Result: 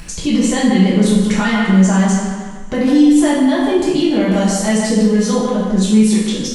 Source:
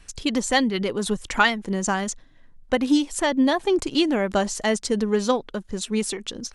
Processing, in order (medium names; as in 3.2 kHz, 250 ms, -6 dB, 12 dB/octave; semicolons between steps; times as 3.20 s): upward compressor, threshold -39 dBFS; on a send: feedback echo behind a low-pass 149 ms, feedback 34%, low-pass 3.2 kHz, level -8 dB; on the sum: saturation -7.5 dBFS, distortion -26 dB; 4.20–5.36 s: treble shelf 6 kHz +8.5 dB; peak limiter -18.5 dBFS, peak gain reduction 9.5 dB; two-slope reverb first 0.75 s, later 3.1 s, from -25 dB, DRR -7.5 dB; in parallel at +2.5 dB: compression, threshold -29 dBFS, peak gain reduction 17.5 dB; on the sum: peaking EQ 160 Hz +10.5 dB 1.5 oct; trim -2.5 dB